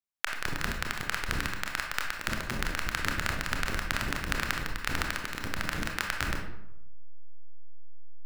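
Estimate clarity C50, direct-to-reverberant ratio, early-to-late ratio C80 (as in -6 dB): 4.5 dB, 1.5 dB, 8.5 dB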